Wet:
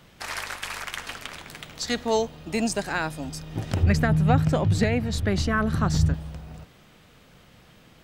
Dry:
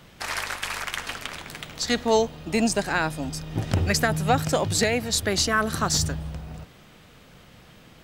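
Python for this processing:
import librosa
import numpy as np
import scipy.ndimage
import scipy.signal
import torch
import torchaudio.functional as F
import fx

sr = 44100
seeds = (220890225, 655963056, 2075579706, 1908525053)

y = fx.bass_treble(x, sr, bass_db=11, treble_db=-11, at=(3.83, 6.14))
y = F.gain(torch.from_numpy(y), -3.0).numpy()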